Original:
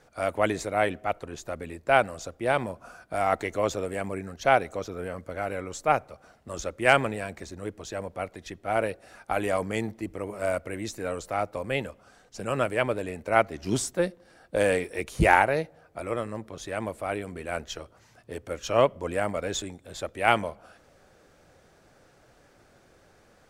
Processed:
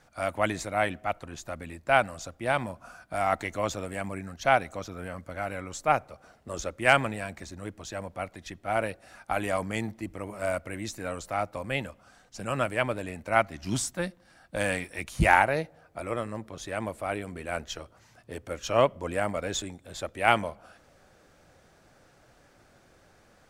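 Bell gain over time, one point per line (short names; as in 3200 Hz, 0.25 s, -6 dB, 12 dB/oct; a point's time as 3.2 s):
bell 430 Hz 0.64 oct
5.6 s -9.5 dB
6.51 s +2 dB
6.84 s -7.5 dB
13.15 s -7.5 dB
13.6 s -14.5 dB
15.12 s -14.5 dB
15.58 s -3.5 dB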